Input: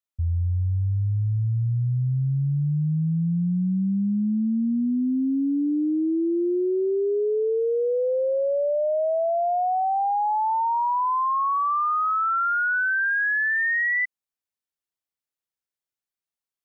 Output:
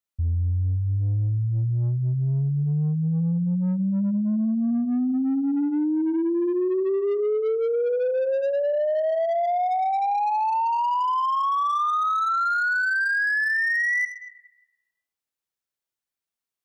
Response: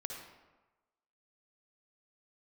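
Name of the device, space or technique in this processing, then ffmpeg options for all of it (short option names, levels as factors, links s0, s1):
saturated reverb return: -filter_complex "[0:a]asplit=2[s0][s1];[1:a]atrim=start_sample=2205[s2];[s1][s2]afir=irnorm=-1:irlink=0,asoftclip=type=tanh:threshold=0.0422,volume=0.708[s3];[s0][s3]amix=inputs=2:normalize=0,volume=0.794"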